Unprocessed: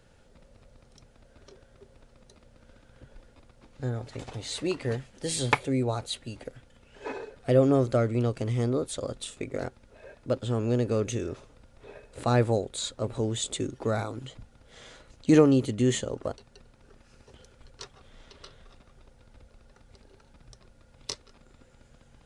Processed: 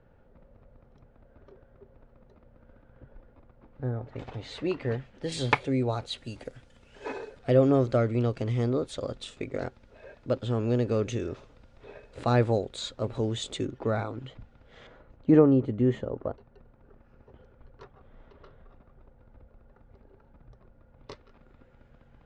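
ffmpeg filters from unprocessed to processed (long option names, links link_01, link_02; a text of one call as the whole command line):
ffmpeg -i in.wav -af "asetnsamples=nb_out_samples=441:pad=0,asendcmd='4.16 lowpass f 2800;5.32 lowpass f 4800;6.18 lowpass f 8700;7.39 lowpass f 4800;13.65 lowpass f 2800;14.87 lowpass f 1300;21.11 lowpass f 2100',lowpass=1400" out.wav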